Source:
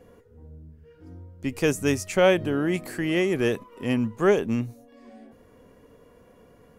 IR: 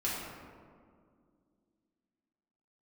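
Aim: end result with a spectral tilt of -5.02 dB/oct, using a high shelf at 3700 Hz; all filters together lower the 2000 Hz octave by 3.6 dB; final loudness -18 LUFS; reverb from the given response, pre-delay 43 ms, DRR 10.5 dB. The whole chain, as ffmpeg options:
-filter_complex "[0:a]equalizer=f=2k:t=o:g=-7,highshelf=f=3.7k:g=8,asplit=2[a][b];[1:a]atrim=start_sample=2205,adelay=43[c];[b][c]afir=irnorm=-1:irlink=0,volume=-16.5dB[d];[a][d]amix=inputs=2:normalize=0,volume=6.5dB"

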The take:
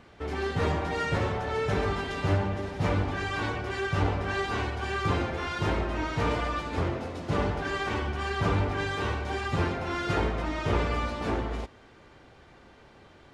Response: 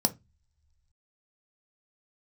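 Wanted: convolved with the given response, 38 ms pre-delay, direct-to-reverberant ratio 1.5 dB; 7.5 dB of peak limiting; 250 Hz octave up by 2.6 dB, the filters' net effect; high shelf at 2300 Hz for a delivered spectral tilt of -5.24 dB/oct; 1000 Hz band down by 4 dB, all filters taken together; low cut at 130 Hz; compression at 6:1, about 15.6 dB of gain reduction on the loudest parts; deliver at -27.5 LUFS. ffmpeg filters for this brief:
-filter_complex "[0:a]highpass=130,equalizer=f=250:t=o:g=4.5,equalizer=f=1k:t=o:g=-4,highshelf=f=2.3k:g=-7,acompressor=threshold=-41dB:ratio=6,alimiter=level_in=14dB:limit=-24dB:level=0:latency=1,volume=-14dB,asplit=2[a][b];[1:a]atrim=start_sample=2205,adelay=38[c];[b][c]afir=irnorm=-1:irlink=0,volume=-9dB[d];[a][d]amix=inputs=2:normalize=0,volume=14dB"

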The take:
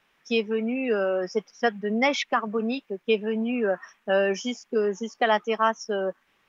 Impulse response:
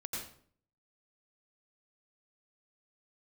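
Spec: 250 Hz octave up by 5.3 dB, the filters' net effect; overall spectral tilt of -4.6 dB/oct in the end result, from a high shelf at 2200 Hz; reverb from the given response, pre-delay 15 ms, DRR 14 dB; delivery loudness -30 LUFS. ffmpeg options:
-filter_complex "[0:a]equalizer=f=250:t=o:g=6,highshelf=f=2.2k:g=-6.5,asplit=2[a][b];[1:a]atrim=start_sample=2205,adelay=15[c];[b][c]afir=irnorm=-1:irlink=0,volume=-14.5dB[d];[a][d]amix=inputs=2:normalize=0,volume=-5.5dB"

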